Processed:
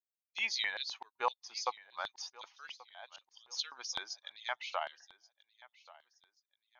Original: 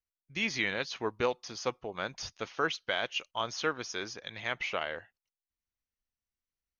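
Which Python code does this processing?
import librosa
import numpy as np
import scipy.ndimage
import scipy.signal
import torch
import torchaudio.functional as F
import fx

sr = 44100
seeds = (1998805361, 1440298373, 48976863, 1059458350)

p1 = fx.bin_expand(x, sr, power=1.5)
p2 = fx.filter_lfo_highpass(p1, sr, shape='square', hz=3.9, low_hz=870.0, high_hz=3900.0, q=3.2)
p3 = fx.auto_swell(p2, sr, attack_ms=639.0, at=(2.7, 3.5), fade=0.02)
p4 = p3 + fx.echo_feedback(p3, sr, ms=1132, feedback_pct=32, wet_db=-21, dry=0)
y = p4 * librosa.db_to_amplitude(-1.5)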